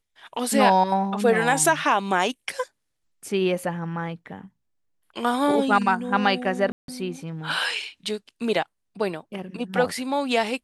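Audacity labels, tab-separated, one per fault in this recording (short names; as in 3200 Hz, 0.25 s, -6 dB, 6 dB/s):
6.720000	6.880000	gap 0.162 s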